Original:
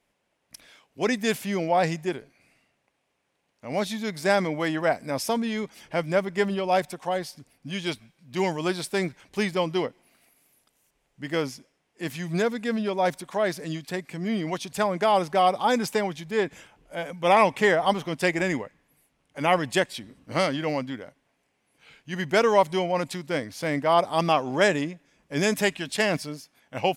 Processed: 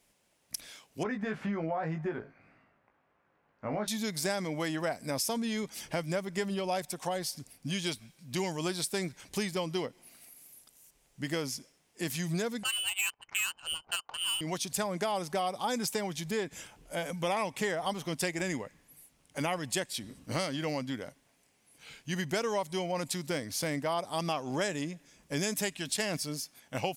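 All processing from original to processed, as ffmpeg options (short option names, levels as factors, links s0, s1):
-filter_complex "[0:a]asettb=1/sr,asplit=3[s0][s1][s2];[s0]atrim=end=1.034[s3];[s1]atrim=start=1.03:end=3.88,asetpts=PTS-STARTPTS,afade=t=in:d=0.004:c=qsin,afade=t=out:st=2.846:d=0.004:c=qsin,acompressor=threshold=0.0355:ratio=2.5:attack=3.2:release=140:knee=1:detection=peak,lowpass=f=1400:t=q:w=2.1,asplit=2[s4][s5];[s5]adelay=19,volume=0.596[s6];[s4][s6]amix=inputs=2:normalize=0,atrim=end_sample=125685[s7];[s2]atrim=start=3.876[s8];[s3][s7]acrossfade=d=0.004:c1=hsin:c2=qsin[s9];[s9][s8]acrossfade=d=0.004:c1=qsin:c2=hsin,asettb=1/sr,asplit=3[s10][s11][s12];[s10]atrim=end=12.634[s13];[s11]atrim=start=12.63:end=14.41,asetpts=PTS-STARTPTS,afade=t=in:d=0.004:c=qsin,afade=t=out:st=1.776:d=0.004:c=qsin,lowpass=f=2700:t=q:w=0.5098,lowpass=f=2700:t=q:w=0.6013,lowpass=f=2700:t=q:w=0.9,lowpass=f=2700:t=q:w=2.563,afreqshift=-3200,equalizer=f=1000:t=o:w=1.4:g=3.5,adynamicsmooth=sensitivity=3.5:basefreq=590[s14];[s12]atrim=start=14.406[s15];[s13][s14]acrossfade=d=0.004:c1=hsin:c2=qsin[s16];[s16][s15]acrossfade=d=0.004:c1=qsin:c2=hsin,bass=f=250:g=3,treble=f=4000:g=11,acompressor=threshold=0.0282:ratio=4"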